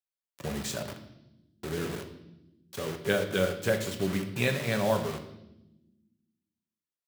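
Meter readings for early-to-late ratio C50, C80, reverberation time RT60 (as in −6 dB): 9.5 dB, 12.0 dB, non-exponential decay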